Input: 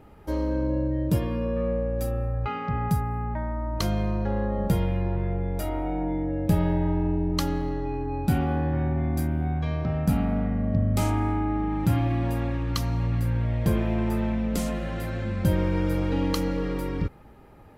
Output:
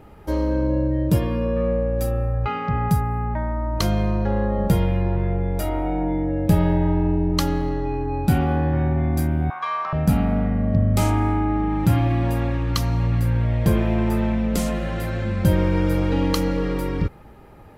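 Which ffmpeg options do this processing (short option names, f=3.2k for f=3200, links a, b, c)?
-filter_complex "[0:a]asettb=1/sr,asplit=3[a][b][c];[a]atrim=end=9.504[d];[b]atrim=start=9.5:end=9.93,asetpts=PTS-STARTPTS,afade=t=in:d=0.004:c=qsin,afade=t=out:st=0.426:d=0.004:c=qsin,highpass=f=1.1k:t=q:w=7.7[e];[c]atrim=start=9.926[f];[d][e]acrossfade=d=0.004:c1=hsin:c2=qsin[g];[g][f]acrossfade=d=0.004:c1=qsin:c2=hsin,equalizer=f=260:w=7:g=-3.5,volume=5dB"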